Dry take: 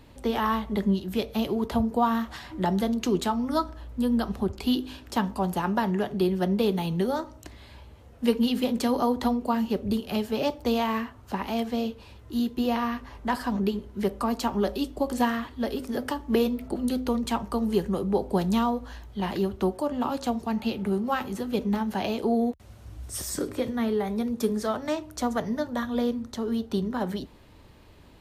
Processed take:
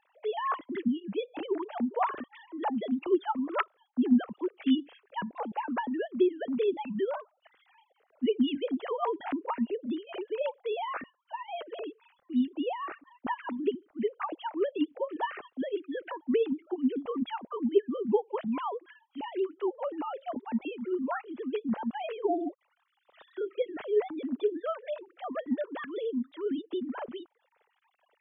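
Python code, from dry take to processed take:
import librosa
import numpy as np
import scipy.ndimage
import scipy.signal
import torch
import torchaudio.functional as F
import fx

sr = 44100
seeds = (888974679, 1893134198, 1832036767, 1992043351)

y = fx.sine_speech(x, sr)
y = fx.dereverb_blind(y, sr, rt60_s=0.58)
y = y * 10.0 ** (-4.5 / 20.0)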